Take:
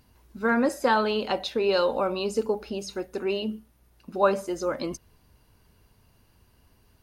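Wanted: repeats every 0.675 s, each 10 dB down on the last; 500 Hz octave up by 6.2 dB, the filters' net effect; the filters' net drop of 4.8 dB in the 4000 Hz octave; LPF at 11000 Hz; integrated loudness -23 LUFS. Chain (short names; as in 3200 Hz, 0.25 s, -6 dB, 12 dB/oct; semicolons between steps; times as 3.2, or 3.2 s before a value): LPF 11000 Hz; bell 500 Hz +7.5 dB; bell 4000 Hz -6.5 dB; feedback echo 0.675 s, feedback 32%, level -10 dB; gain -1 dB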